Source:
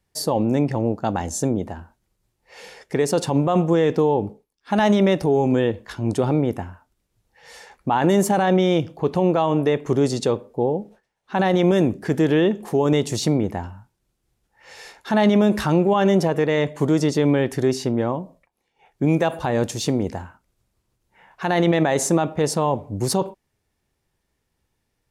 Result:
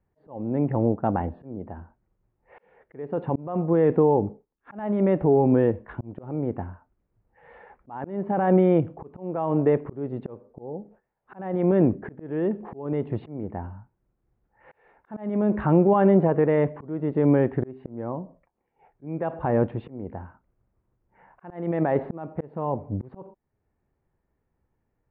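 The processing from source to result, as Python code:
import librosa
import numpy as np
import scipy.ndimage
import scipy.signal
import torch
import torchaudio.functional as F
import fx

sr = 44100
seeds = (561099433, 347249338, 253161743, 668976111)

y = fx.auto_swell(x, sr, attack_ms=514.0)
y = scipy.ndimage.gaussian_filter1d(y, 5.0, mode='constant')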